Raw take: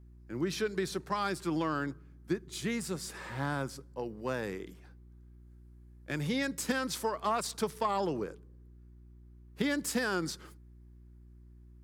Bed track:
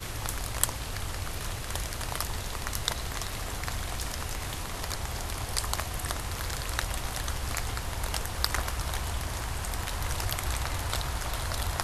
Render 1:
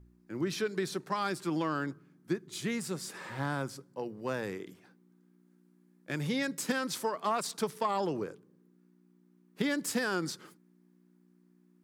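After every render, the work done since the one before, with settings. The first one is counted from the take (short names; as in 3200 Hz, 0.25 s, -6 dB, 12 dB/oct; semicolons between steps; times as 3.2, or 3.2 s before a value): de-hum 60 Hz, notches 2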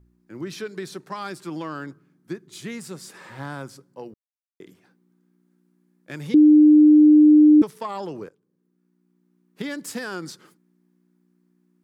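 4.14–4.6 mute; 6.34–7.62 bleep 302 Hz -8.5 dBFS; 8.29–9.71 fade in equal-power, from -16 dB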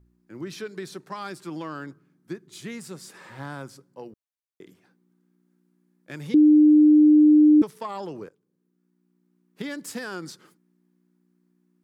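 gain -2.5 dB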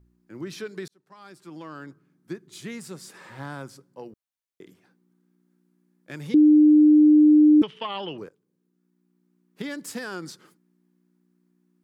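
0.88–2.32 fade in linear; 7.63–8.18 synth low-pass 3000 Hz, resonance Q 14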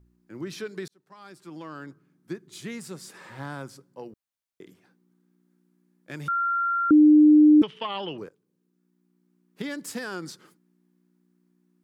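6.28–6.91 bleep 1380 Hz -22 dBFS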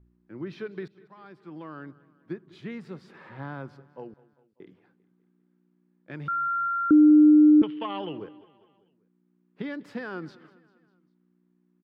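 air absorption 350 m; feedback echo 0.198 s, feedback 57%, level -20.5 dB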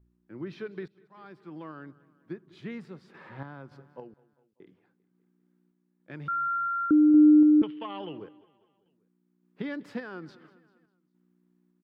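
random-step tremolo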